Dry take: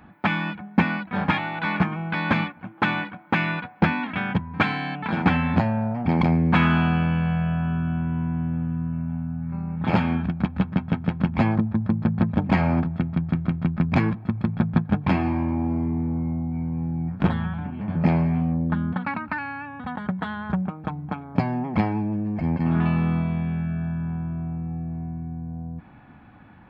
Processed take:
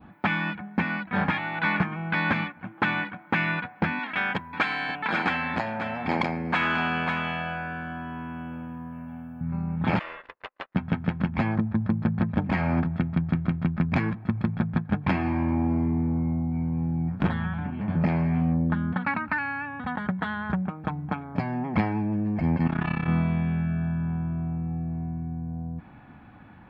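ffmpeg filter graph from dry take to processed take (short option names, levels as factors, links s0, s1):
-filter_complex "[0:a]asettb=1/sr,asplit=3[s0][s1][s2];[s0]atrim=end=3.994[s3];[s1]atrim=start=3.99:end=9.41,asetpts=PTS-STARTPTS,afade=t=in:d=0.004:c=qsin,afade=t=out:st=5.416:d=0.004:c=qsin,bass=f=250:g=-14,treble=f=4000:g=7,aecho=1:1:539:0.282,atrim=end_sample=239022[s4];[s2]atrim=start=9.406[s5];[s3][s4]acrossfade=d=0.004:c1=hsin:c2=qsin[s6];[s6][s5]acrossfade=d=0.004:c1=qsin:c2=hsin,asettb=1/sr,asplit=3[s7][s8][s9];[s7]atrim=end=9.994[s10];[s8]atrim=start=9.99:end=10.75,asetpts=PTS-STARTPTS,afade=t=in:d=0.004:c=qsin,afade=t=out:st=0.756:d=0.004:c=qsin,agate=range=0.0447:threshold=0.0501:ratio=16:release=100:detection=peak,highpass=f=570:w=0.5412,highpass=f=570:w=1.3066,aeval=exprs='val(0)*sin(2*PI*260*n/s)':c=same[s11];[s9]atrim=start=10.746[s12];[s10][s11]acrossfade=d=0.004:c1=hsin:c2=qsin[s13];[s13][s12]acrossfade=d=0.004:c1=qsin:c2=hsin,asettb=1/sr,asplit=3[s14][s15][s16];[s14]atrim=end=22.674[s17];[s15]atrim=start=22.67:end=23.08,asetpts=PTS-STARTPTS,afade=t=in:d=0.004:c=qsin,afade=t=out:st=0.406:d=0.004:c=qsin,tiltshelf=f=850:g=-3.5,tremolo=f=33:d=0.919[s18];[s16]atrim=start=23.076[s19];[s17][s18]acrossfade=d=0.004:c1=hsin:c2=qsin[s20];[s20][s19]acrossfade=d=0.004:c1=qsin:c2=hsin,adynamicequalizer=threshold=0.00794:dfrequency=1800:dqfactor=1.6:tfrequency=1800:tqfactor=1.6:attack=5:release=100:ratio=0.375:range=2.5:mode=boostabove:tftype=bell,alimiter=limit=0.224:level=0:latency=1:release=432"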